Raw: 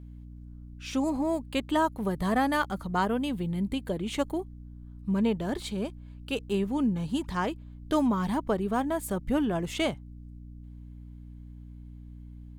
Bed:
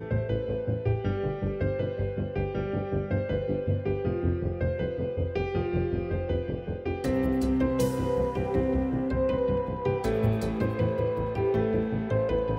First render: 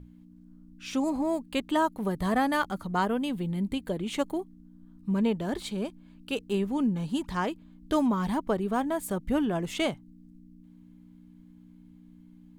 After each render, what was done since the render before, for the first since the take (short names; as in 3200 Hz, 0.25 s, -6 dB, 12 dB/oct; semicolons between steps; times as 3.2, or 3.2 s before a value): notches 60/120 Hz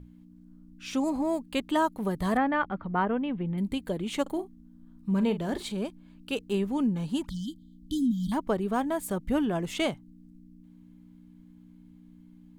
2.37–3.58 LPF 2600 Hz 24 dB/oct; 4.22–5.72 doubler 42 ms -11.5 dB; 7.29–8.32 brick-wall FIR band-stop 320–3000 Hz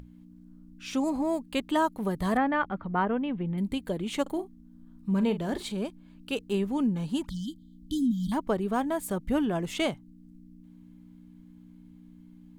upward compressor, threshold -46 dBFS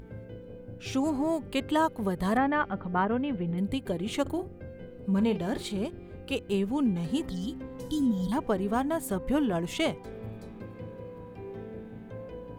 add bed -15.5 dB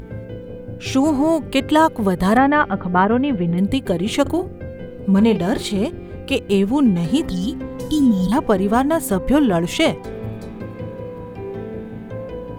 gain +11.5 dB